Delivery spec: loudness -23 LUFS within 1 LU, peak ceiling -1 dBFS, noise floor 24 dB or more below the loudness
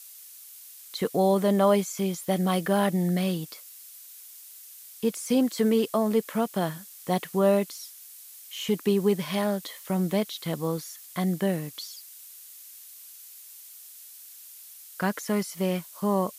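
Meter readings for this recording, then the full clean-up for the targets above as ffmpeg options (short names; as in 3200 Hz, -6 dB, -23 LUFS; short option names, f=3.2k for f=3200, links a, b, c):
noise floor -47 dBFS; noise floor target -51 dBFS; loudness -26.5 LUFS; peak -10.0 dBFS; loudness target -23.0 LUFS
-> -af "afftdn=nr=6:nf=-47"
-af "volume=3.5dB"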